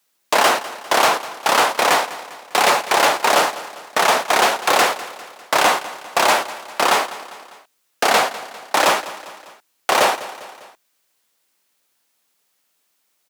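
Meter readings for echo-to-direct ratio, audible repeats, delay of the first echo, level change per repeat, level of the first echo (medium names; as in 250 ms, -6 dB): -14.5 dB, 3, 200 ms, -5.5 dB, -16.0 dB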